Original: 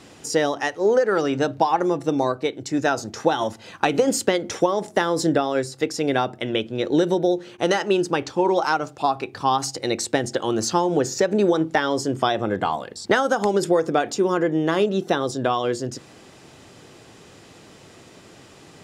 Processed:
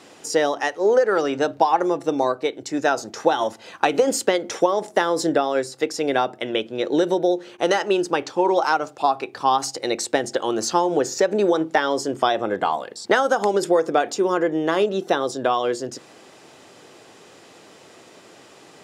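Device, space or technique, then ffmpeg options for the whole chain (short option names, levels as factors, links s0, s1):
filter by subtraction: -filter_complex "[0:a]asplit=2[s0][s1];[s1]lowpass=540,volume=-1[s2];[s0][s2]amix=inputs=2:normalize=0"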